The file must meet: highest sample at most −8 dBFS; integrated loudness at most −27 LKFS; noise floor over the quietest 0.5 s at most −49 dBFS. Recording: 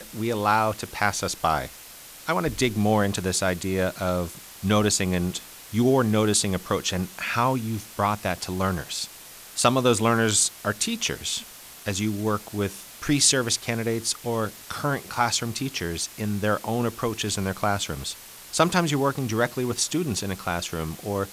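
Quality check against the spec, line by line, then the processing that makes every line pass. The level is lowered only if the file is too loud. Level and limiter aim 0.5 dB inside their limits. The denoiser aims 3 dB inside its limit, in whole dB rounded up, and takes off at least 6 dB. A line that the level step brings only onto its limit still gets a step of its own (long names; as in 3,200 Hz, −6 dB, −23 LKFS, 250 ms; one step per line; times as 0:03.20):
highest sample −4.5 dBFS: out of spec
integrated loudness −25.0 LKFS: out of spec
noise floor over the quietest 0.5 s −44 dBFS: out of spec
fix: broadband denoise 6 dB, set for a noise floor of −44 dBFS
level −2.5 dB
brickwall limiter −8.5 dBFS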